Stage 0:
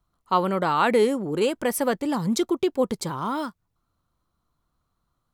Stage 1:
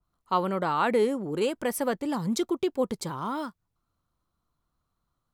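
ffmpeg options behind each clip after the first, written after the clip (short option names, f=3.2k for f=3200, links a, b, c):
-af "adynamicequalizer=threshold=0.0224:dfrequency=2000:dqfactor=0.7:tfrequency=2000:tqfactor=0.7:attack=5:release=100:ratio=0.375:range=2:mode=cutabove:tftype=highshelf,volume=-4dB"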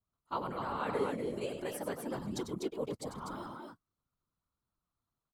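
-af "aecho=1:1:96.21|247.8:0.398|0.631,afftfilt=real='hypot(re,im)*cos(2*PI*random(0))':imag='hypot(re,im)*sin(2*PI*random(1))':win_size=512:overlap=0.75,volume=-6dB"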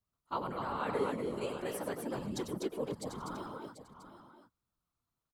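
-af "aecho=1:1:740:0.251"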